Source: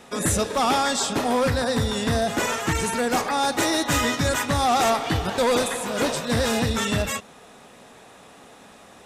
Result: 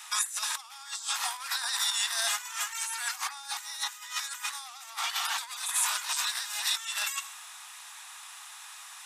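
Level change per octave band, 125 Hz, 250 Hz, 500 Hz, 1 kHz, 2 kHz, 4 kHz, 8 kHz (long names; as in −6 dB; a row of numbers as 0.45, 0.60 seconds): below −40 dB, below −40 dB, −31.5 dB, −14.0 dB, −7.0 dB, −3.0 dB, −2.0 dB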